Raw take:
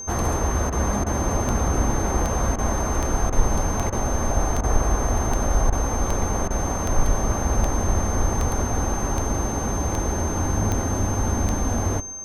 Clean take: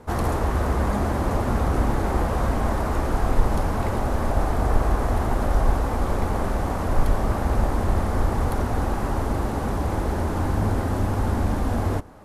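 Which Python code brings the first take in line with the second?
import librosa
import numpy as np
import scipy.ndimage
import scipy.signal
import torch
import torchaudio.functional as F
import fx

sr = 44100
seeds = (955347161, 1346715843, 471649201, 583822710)

y = fx.fix_declick_ar(x, sr, threshold=10.0)
y = fx.notch(y, sr, hz=6300.0, q=30.0)
y = fx.fix_interpolate(y, sr, at_s=(0.7, 1.04, 2.56, 3.3, 3.9, 4.61, 5.7, 6.48), length_ms=23.0)
y = fx.fix_echo_inverse(y, sr, delay_ms=124, level_db=-24.0)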